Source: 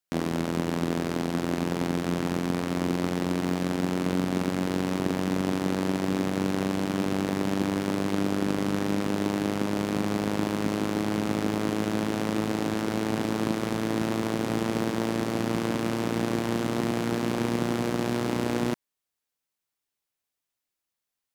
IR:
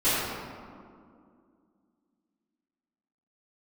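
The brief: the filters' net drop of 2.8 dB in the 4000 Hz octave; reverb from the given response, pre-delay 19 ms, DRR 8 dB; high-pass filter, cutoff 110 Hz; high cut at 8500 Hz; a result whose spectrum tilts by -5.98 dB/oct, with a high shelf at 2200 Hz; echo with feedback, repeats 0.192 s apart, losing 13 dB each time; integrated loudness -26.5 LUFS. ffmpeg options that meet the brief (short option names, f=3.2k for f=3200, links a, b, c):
-filter_complex "[0:a]highpass=110,lowpass=8.5k,highshelf=f=2.2k:g=5,equalizer=f=4k:t=o:g=-8.5,aecho=1:1:192|384|576:0.224|0.0493|0.0108,asplit=2[a][b];[1:a]atrim=start_sample=2205,adelay=19[c];[b][c]afir=irnorm=-1:irlink=0,volume=-23.5dB[d];[a][d]amix=inputs=2:normalize=0,volume=0.5dB"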